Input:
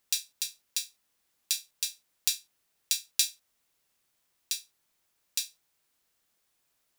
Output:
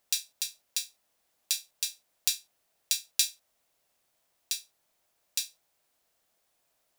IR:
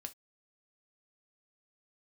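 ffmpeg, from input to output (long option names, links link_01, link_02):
-af "equalizer=frequency=650:width_type=o:width=0.79:gain=9"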